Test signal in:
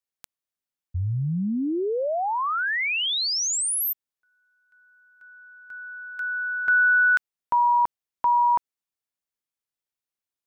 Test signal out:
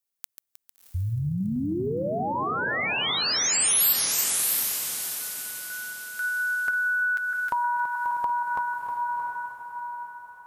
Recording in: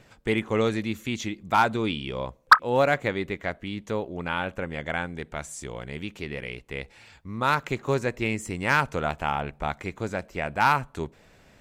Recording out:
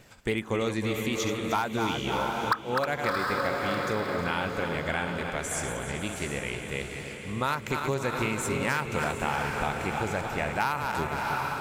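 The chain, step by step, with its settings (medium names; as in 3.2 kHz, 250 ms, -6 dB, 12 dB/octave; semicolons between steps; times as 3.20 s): backward echo that repeats 156 ms, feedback 67%, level -8.5 dB; echo that smears into a reverb 700 ms, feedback 44%, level -7.5 dB; compression 8:1, threshold -24 dBFS; treble shelf 7.5 kHz +10.5 dB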